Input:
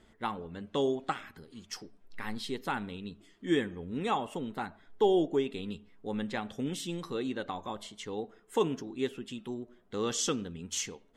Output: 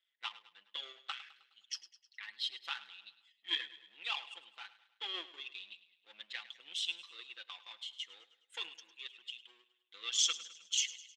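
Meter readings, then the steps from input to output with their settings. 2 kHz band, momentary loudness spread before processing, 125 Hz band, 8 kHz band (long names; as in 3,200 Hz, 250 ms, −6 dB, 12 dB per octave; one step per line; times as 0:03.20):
−2.5 dB, 12 LU, below −40 dB, 0.0 dB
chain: spectral envelope exaggerated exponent 1.5
comb filter 5.9 ms, depth 72%
power curve on the samples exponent 1.4
in parallel at −2.5 dB: output level in coarse steps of 12 dB
on the sum: four-pole ladder band-pass 3,500 Hz, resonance 45%
on a send: repeating echo 104 ms, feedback 51%, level −16 dB
on the sum: level +15 dB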